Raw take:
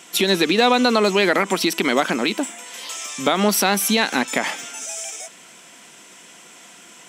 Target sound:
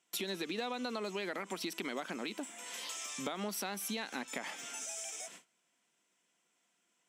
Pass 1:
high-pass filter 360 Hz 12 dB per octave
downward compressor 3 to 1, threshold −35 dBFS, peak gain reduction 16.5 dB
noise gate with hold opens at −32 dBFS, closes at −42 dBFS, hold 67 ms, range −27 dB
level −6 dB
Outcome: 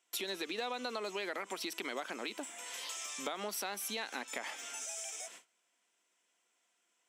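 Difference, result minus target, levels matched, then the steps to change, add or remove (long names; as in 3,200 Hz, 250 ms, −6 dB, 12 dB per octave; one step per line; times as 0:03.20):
125 Hz band −10.0 dB
change: high-pass filter 97 Hz 12 dB per octave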